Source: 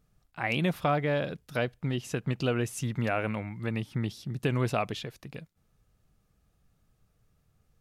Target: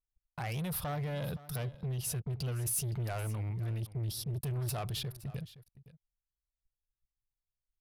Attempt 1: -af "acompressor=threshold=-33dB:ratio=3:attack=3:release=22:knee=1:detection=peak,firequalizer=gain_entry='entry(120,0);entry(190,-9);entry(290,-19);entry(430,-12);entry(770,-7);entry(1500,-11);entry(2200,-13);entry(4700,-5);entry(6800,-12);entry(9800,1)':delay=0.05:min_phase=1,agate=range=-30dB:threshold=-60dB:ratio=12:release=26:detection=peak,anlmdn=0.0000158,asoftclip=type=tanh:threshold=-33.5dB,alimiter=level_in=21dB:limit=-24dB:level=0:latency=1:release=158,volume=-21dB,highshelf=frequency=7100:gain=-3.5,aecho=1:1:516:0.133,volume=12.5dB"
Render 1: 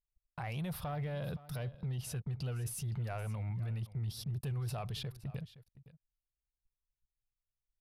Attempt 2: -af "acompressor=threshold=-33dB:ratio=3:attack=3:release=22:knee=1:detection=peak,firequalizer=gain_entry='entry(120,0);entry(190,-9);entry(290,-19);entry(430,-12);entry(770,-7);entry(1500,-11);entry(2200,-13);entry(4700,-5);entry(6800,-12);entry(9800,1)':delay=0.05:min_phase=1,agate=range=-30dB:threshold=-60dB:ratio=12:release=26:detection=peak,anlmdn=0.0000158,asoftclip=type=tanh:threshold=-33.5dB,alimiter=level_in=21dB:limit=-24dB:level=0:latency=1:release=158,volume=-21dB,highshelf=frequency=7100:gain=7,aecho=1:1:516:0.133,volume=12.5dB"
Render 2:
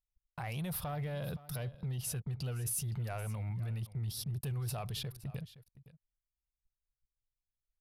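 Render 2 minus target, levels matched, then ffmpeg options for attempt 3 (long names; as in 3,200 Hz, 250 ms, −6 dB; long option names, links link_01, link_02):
soft clipping: distortion −8 dB
-af "acompressor=threshold=-33dB:ratio=3:attack=3:release=22:knee=1:detection=peak,firequalizer=gain_entry='entry(120,0);entry(190,-9);entry(290,-19);entry(430,-12);entry(770,-7);entry(1500,-11);entry(2200,-13);entry(4700,-5);entry(6800,-12);entry(9800,1)':delay=0.05:min_phase=1,agate=range=-30dB:threshold=-60dB:ratio=12:release=26:detection=peak,anlmdn=0.0000158,asoftclip=type=tanh:threshold=-41dB,alimiter=level_in=21dB:limit=-24dB:level=0:latency=1:release=158,volume=-21dB,highshelf=frequency=7100:gain=7,aecho=1:1:516:0.133,volume=12.5dB"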